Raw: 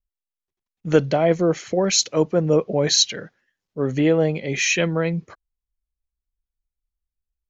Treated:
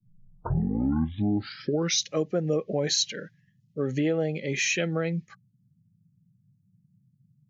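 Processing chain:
turntable start at the beginning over 2.13 s
downward compressor 2.5 to 1, threshold −21 dBFS, peak gain reduction 6.5 dB
noise reduction from a noise print of the clip's start 20 dB
noise in a band 100–190 Hz −61 dBFS
level −3 dB

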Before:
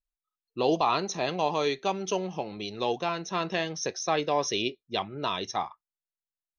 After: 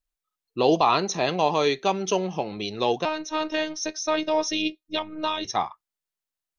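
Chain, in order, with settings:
0:03.05–0:05.45: phases set to zero 311 Hz
level +5 dB

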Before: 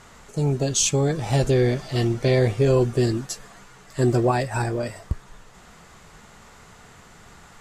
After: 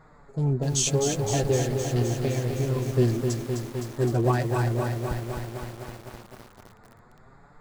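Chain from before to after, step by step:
adaptive Wiener filter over 15 samples
0:01.60–0:02.93: downward compressor 6 to 1, threshold −21 dBFS, peak gain reduction 6.5 dB
flanger 0.39 Hz, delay 6.3 ms, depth 4.1 ms, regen +25%
feedback echo at a low word length 257 ms, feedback 80%, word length 7 bits, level −5.5 dB

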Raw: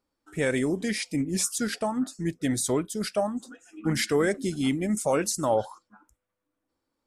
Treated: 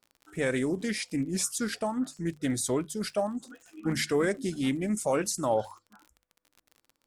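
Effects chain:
surface crackle 42 per second −39 dBFS
mains-hum notches 50/100/150 Hz
highs frequency-modulated by the lows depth 0.1 ms
level −2.5 dB

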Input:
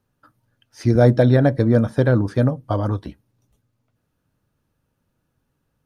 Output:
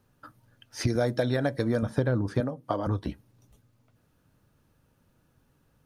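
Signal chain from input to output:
0:00.87–0:01.83: spectral tilt +2.5 dB per octave
downward compressor 5 to 1, threshold −29 dBFS, peak gain reduction 15.5 dB
0:02.40–0:02.87: high-pass filter 220 Hz 12 dB per octave
level +5 dB

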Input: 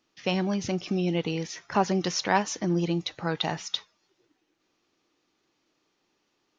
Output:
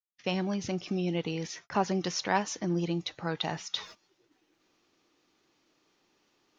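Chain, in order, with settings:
noise gate −47 dBFS, range −44 dB
reversed playback
upward compression, threshold −29 dBFS
reversed playback
level −4 dB

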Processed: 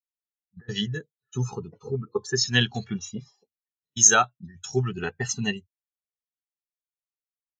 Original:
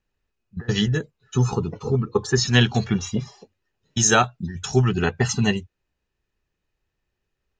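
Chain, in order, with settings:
spectral tilt +2 dB per octave
every bin expanded away from the loudest bin 1.5 to 1
level −1 dB

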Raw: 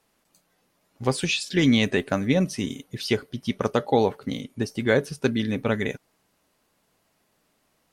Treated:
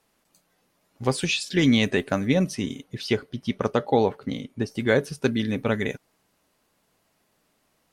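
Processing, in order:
0:02.54–0:04.70: high-shelf EQ 8,600 Hz → 5,700 Hz −10 dB

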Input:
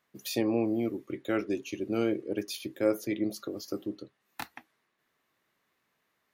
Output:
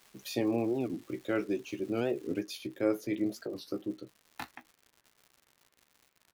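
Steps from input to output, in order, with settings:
high-shelf EQ 4,800 Hz −6 dB
double-tracking delay 16 ms −9.5 dB
surface crackle 580 per second −45 dBFS, from 0:02.41 180 per second
wow of a warped record 45 rpm, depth 250 cents
level −2 dB

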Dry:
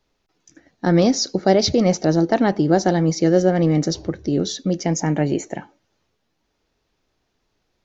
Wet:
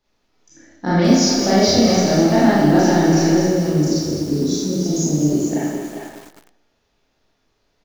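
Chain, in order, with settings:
0:03.27–0:05.49: Chebyshev band-stop filter 390–5,500 Hz, order 2
dynamic equaliser 490 Hz, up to −7 dB, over −32 dBFS, Q 2.7
far-end echo of a speakerphone 400 ms, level −6 dB
four-comb reverb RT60 0.92 s, combs from 27 ms, DRR −8 dB
feedback echo at a low word length 206 ms, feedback 55%, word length 5 bits, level −8 dB
level −4.5 dB

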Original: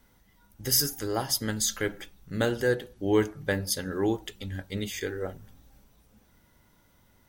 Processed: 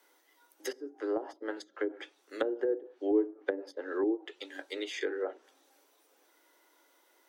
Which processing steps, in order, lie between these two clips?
Butterworth high-pass 300 Hz 72 dB per octave
treble cut that deepens with the level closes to 380 Hz, closed at −24.5 dBFS

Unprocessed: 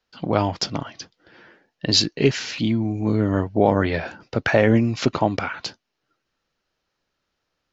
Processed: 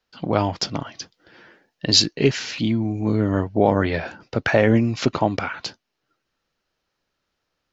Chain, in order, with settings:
0:00.92–0:02.12: high-shelf EQ 5,600 Hz +6 dB

